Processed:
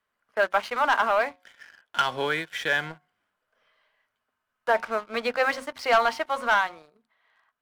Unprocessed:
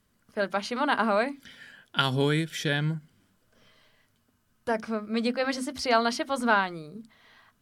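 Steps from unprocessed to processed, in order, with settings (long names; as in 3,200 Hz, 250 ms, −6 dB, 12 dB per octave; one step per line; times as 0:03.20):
three-way crossover with the lows and the highs turned down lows −22 dB, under 530 Hz, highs −15 dB, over 2,800 Hz
hum removal 181.5 Hz, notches 6
leveller curve on the samples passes 2
speech leveller within 5 dB 2 s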